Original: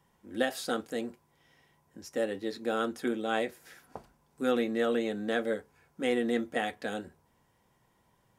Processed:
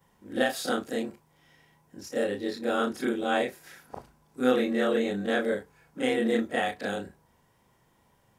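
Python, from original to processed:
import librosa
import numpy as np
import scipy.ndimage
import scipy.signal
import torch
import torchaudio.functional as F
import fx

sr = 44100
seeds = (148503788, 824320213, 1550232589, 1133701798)

y = fx.frame_reverse(x, sr, frame_ms=79.0)
y = y * 10.0 ** (7.0 / 20.0)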